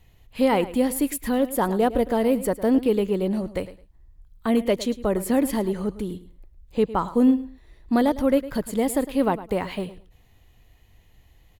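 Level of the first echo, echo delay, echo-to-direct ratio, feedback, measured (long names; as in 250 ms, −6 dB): −15.5 dB, 107 ms, −15.5 dB, 19%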